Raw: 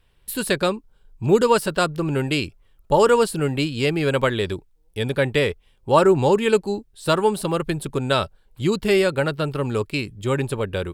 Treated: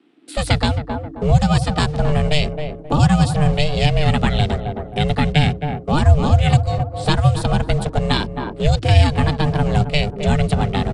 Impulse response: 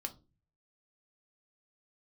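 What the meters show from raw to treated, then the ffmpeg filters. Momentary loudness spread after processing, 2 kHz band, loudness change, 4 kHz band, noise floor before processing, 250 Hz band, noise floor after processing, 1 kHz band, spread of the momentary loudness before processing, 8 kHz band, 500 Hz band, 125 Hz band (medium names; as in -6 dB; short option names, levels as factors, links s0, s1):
8 LU, +1.0 dB, +3.0 dB, +4.5 dB, -59 dBFS, +3.5 dB, -35 dBFS, +2.0 dB, 11 LU, -1.0 dB, -4.0 dB, +11.5 dB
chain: -filter_complex "[0:a]aeval=exprs='val(0)*sin(2*PI*300*n/s)':c=same,acrossover=split=150|740|2700[s0][s1][s2][s3];[s0]acrusher=bits=7:mix=0:aa=0.000001[s4];[s4][s1][s2][s3]amix=inputs=4:normalize=0,aresample=22050,aresample=44100,asplit=2[s5][s6];[s6]adelay=266,lowpass=f=990:p=1,volume=0.316,asplit=2[s7][s8];[s8]adelay=266,lowpass=f=990:p=1,volume=0.32,asplit=2[s9][s10];[s10]adelay=266,lowpass=f=990:p=1,volume=0.32,asplit=2[s11][s12];[s12]adelay=266,lowpass=f=990:p=1,volume=0.32[s13];[s5][s7][s9][s11][s13]amix=inputs=5:normalize=0,dynaudnorm=f=220:g=3:m=2.51,aemphasis=mode=reproduction:type=50fm,acrossover=split=180|3000[s14][s15][s16];[s15]acompressor=threshold=0.0398:ratio=6[s17];[s14][s17][s16]amix=inputs=3:normalize=0,bandreject=f=50:t=h:w=6,bandreject=f=100:t=h:w=6,volume=2.11"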